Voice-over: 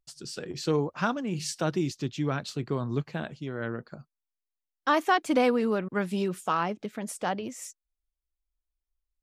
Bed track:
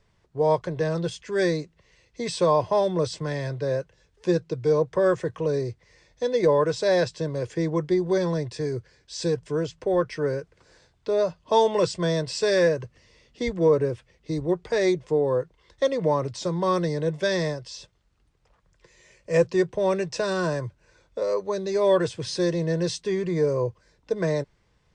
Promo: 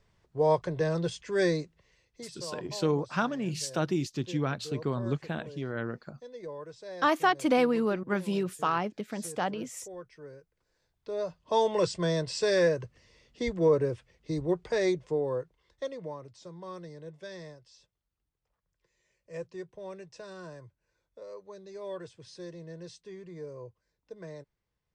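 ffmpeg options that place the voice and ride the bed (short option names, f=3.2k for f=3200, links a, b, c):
-filter_complex "[0:a]adelay=2150,volume=-1dB[a];[1:a]volume=14dB,afade=t=out:st=1.62:d=0.73:silence=0.125893,afade=t=in:st=10.74:d=1.12:silence=0.141254,afade=t=out:st=14.64:d=1.55:silence=0.177828[b];[a][b]amix=inputs=2:normalize=0"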